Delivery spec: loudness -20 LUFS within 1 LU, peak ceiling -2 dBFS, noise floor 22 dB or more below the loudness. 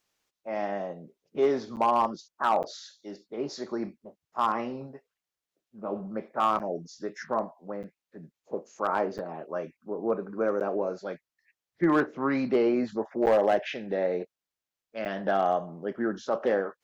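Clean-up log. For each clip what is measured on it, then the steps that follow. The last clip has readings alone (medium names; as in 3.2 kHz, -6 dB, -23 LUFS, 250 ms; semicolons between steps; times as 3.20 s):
clipped samples 0.2%; clipping level -16.0 dBFS; dropouts 8; longest dropout 8.5 ms; loudness -29.5 LUFS; peak level -16.0 dBFS; loudness target -20.0 LUFS
-> clip repair -16 dBFS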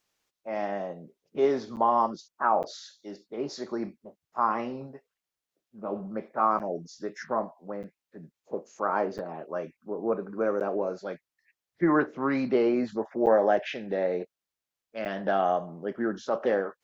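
clipped samples 0.0%; dropouts 8; longest dropout 8.5 ms
-> interpolate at 1.76/2.63/6.59/7.83/9.18/10.60/13.26/15.05 s, 8.5 ms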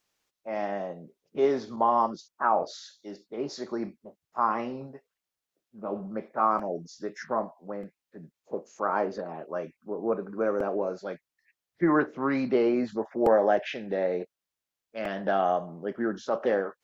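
dropouts 0; loudness -29.0 LUFS; peak level -10.0 dBFS; loudness target -20.0 LUFS
-> trim +9 dB; peak limiter -2 dBFS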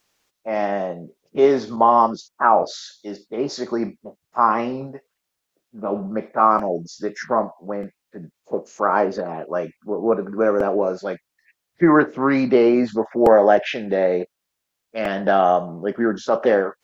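loudness -20.0 LUFS; peak level -2.0 dBFS; noise floor -80 dBFS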